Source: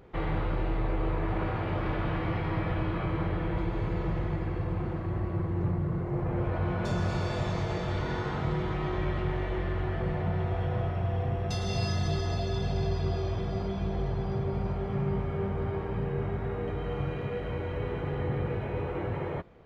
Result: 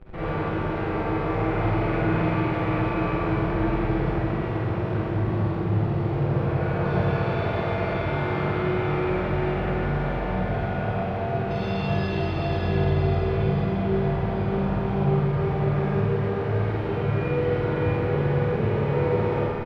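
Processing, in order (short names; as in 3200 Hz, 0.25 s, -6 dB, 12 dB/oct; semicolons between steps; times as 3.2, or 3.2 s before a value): HPF 88 Hz 6 dB/oct; bell 2500 Hz +5 dB 0.25 oct; notch 990 Hz, Q 19; in parallel at -5.5 dB: Schmitt trigger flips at -48 dBFS; on the sum: air absorption 380 m; doubler 47 ms -4 dB; on a send: echo 0.598 s -6.5 dB; on the sum: Schroeder reverb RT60 1.7 s, DRR -6.5 dB; gain -3 dB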